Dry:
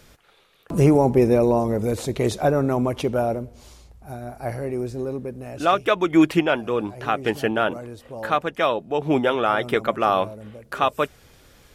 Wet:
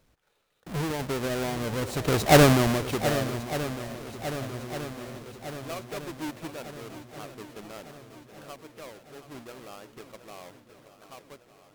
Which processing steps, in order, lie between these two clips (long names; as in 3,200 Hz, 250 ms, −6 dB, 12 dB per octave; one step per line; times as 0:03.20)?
each half-wave held at its own peak
source passing by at 0:02.40, 18 m/s, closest 1.9 metres
in parallel at +3 dB: downward compressor, threshold −38 dBFS, peak gain reduction 22.5 dB
on the sum: feedback echo with a long and a short gap by turns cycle 1,205 ms, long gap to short 1.5 to 1, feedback 54%, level −12.5 dB